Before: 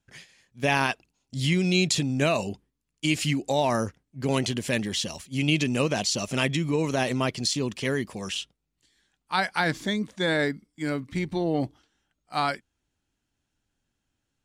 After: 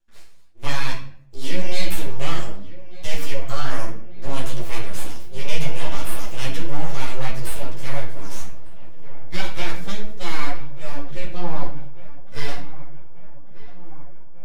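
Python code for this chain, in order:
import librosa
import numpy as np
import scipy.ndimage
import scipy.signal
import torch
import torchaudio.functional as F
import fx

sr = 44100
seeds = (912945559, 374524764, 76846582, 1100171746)

y = np.abs(x)
y = fx.echo_filtered(y, sr, ms=1192, feedback_pct=75, hz=2200.0, wet_db=-17.0)
y = fx.room_shoebox(y, sr, seeds[0], volume_m3=94.0, walls='mixed', distance_m=0.76)
y = fx.ensemble(y, sr)
y = y * librosa.db_to_amplitude(-1.0)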